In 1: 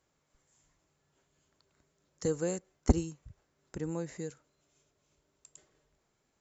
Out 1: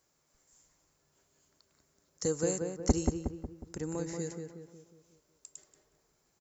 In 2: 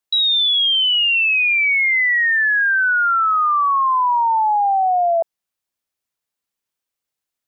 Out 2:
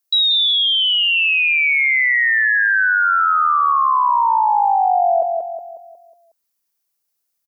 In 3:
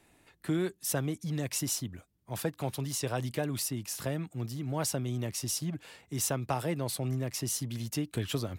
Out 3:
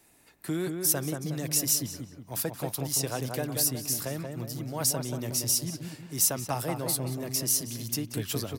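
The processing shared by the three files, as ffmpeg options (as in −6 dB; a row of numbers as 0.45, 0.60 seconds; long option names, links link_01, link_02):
-filter_complex "[0:a]lowshelf=frequency=150:gain=-4,aexciter=amount=2.9:drive=2.9:freq=4600,asplit=2[link_01][link_02];[link_02]adelay=182,lowpass=frequency=1800:poles=1,volume=-4dB,asplit=2[link_03][link_04];[link_04]adelay=182,lowpass=frequency=1800:poles=1,volume=0.49,asplit=2[link_05][link_06];[link_06]adelay=182,lowpass=frequency=1800:poles=1,volume=0.49,asplit=2[link_07][link_08];[link_08]adelay=182,lowpass=frequency=1800:poles=1,volume=0.49,asplit=2[link_09][link_10];[link_10]adelay=182,lowpass=frequency=1800:poles=1,volume=0.49,asplit=2[link_11][link_12];[link_12]adelay=182,lowpass=frequency=1800:poles=1,volume=0.49[link_13];[link_01][link_03][link_05][link_07][link_09][link_11][link_13]amix=inputs=7:normalize=0"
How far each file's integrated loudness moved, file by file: 0.0, +0.5, +5.0 LU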